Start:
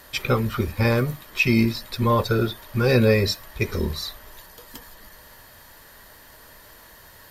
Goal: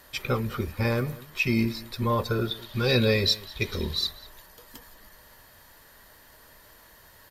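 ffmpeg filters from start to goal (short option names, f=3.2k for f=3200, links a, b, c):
-filter_complex "[0:a]asettb=1/sr,asplit=3[a][b][c];[a]atrim=end=2.514[d];[b]atrim=start=2.51:end=4.07,asetpts=PTS-STARTPTS,afade=t=in:d=0.004:c=qsin,afade=t=out:st=1.556:d=0.004:c=qsin,equalizer=f=3.7k:t=o:w=0.75:g=13[e];[c]atrim=start=4.066[f];[d][e]acrossfade=d=0.004:c1=hsin:c2=qsin[g];[g][f]acrossfade=d=0.004:c1=qsin:c2=hsin,asplit=2[h][i];[i]adelay=198.3,volume=-19dB,highshelf=f=4k:g=-4.46[j];[h][j]amix=inputs=2:normalize=0,volume=-5.5dB"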